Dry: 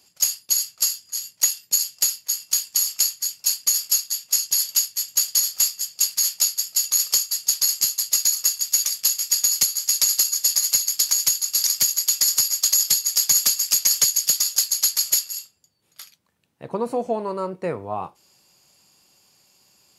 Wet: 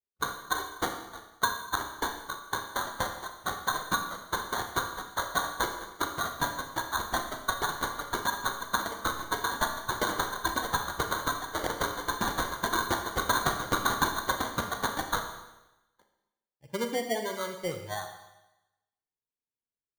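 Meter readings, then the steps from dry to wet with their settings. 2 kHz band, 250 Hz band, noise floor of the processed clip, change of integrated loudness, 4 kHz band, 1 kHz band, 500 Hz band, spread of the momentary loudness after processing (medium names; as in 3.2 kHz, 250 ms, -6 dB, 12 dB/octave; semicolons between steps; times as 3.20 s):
+8.0 dB, no reading, under -85 dBFS, -12.5 dB, -13.0 dB, +8.0 dB, -2.0 dB, 7 LU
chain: expander on every frequency bin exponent 2; sample-and-hold 17×; Schroeder reverb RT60 0.98 s, combs from 27 ms, DRR 5 dB; trim -4.5 dB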